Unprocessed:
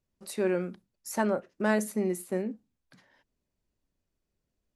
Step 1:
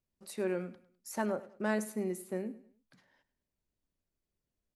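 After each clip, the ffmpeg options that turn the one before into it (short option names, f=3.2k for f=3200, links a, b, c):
-af "aecho=1:1:102|204|306:0.126|0.0466|0.0172,volume=-6dB"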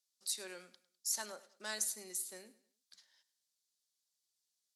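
-af "bandpass=f=3k:t=q:w=0.79:csg=0,aexciter=amount=5.1:drive=8.6:freq=3.7k,volume=-2.5dB"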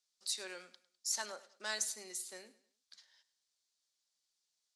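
-af "lowpass=7.2k,equalizer=f=110:w=0.39:g=-9,volume=3.5dB"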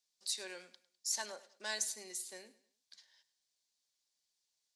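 -af "bandreject=f=1.3k:w=5.2"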